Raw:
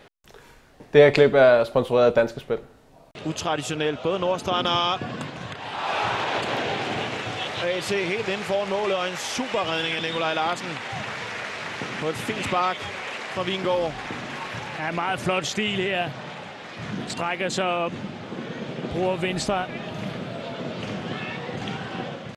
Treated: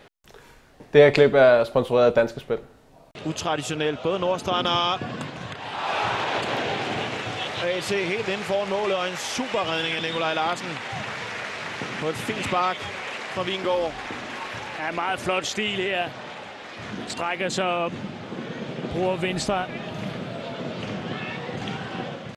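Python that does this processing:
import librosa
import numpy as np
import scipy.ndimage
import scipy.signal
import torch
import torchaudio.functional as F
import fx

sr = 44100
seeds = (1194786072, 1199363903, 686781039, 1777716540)

y = fx.peak_eq(x, sr, hz=150.0, db=-9.5, octaves=0.67, at=(13.47, 17.36))
y = fx.high_shelf(y, sr, hz=9000.0, db=-6.0, at=(20.83, 21.26))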